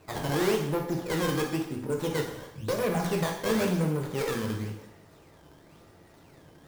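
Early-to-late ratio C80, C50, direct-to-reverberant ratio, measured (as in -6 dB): 8.5 dB, 6.0 dB, 1.0 dB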